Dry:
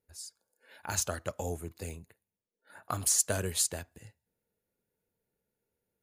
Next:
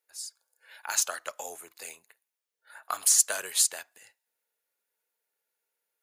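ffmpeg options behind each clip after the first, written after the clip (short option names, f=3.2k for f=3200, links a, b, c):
-af "highpass=960,volume=5.5dB"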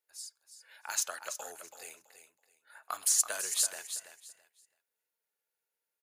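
-af "aecho=1:1:330|660|990:0.316|0.0696|0.0153,volume=-5.5dB"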